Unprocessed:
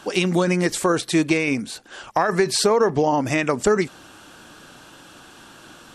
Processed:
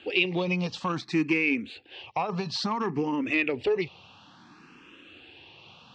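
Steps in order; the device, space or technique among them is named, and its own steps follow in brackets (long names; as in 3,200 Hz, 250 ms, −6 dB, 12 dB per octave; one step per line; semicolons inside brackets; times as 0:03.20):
barber-pole phaser into a guitar amplifier (frequency shifter mixed with the dry sound +0.58 Hz; soft clipping −13 dBFS, distortion −20 dB; loudspeaker in its box 81–4,400 Hz, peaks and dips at 88 Hz +5 dB, 620 Hz −8 dB, 1,500 Hz −9 dB, 2,600 Hz +9 dB)
level −3 dB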